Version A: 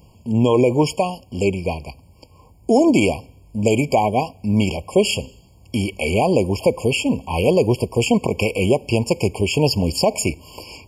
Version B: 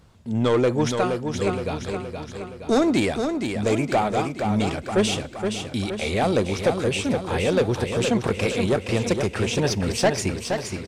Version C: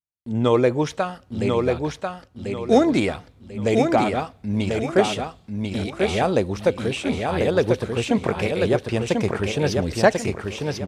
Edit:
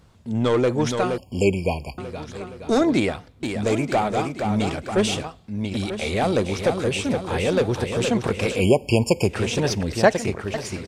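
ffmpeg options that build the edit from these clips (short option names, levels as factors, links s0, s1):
-filter_complex "[0:a]asplit=2[s0][s1];[2:a]asplit=3[s2][s3][s4];[1:a]asplit=6[s5][s6][s7][s8][s9][s10];[s5]atrim=end=1.182[s11];[s0]atrim=start=1.178:end=1.982[s12];[s6]atrim=start=1.978:end=2.812[s13];[s2]atrim=start=2.808:end=3.432[s14];[s7]atrim=start=3.428:end=5.242[s15];[s3]atrim=start=5.238:end=5.772[s16];[s8]atrim=start=5.768:end=8.66[s17];[s1]atrim=start=8.5:end=9.37[s18];[s9]atrim=start=9.21:end=9.832[s19];[s4]atrim=start=9.828:end=10.542[s20];[s10]atrim=start=10.538[s21];[s11][s12]acrossfade=d=0.004:c1=hsin:c2=hsin[s22];[s22][s13]acrossfade=d=0.004:c1=hsin:c2=hsin[s23];[s23][s14]acrossfade=d=0.004:c1=hsin:c2=hsin[s24];[s24][s15]acrossfade=d=0.004:c1=hsin:c2=hsin[s25];[s25][s16]acrossfade=d=0.004:c1=hsin:c2=hsin[s26];[s26][s17]acrossfade=d=0.004:c1=hsin:c2=hsin[s27];[s27][s18]acrossfade=d=0.16:c1=tri:c2=tri[s28];[s28][s19]acrossfade=d=0.16:c1=tri:c2=tri[s29];[s29][s20]acrossfade=d=0.004:c1=hsin:c2=hsin[s30];[s30][s21]acrossfade=d=0.004:c1=hsin:c2=hsin"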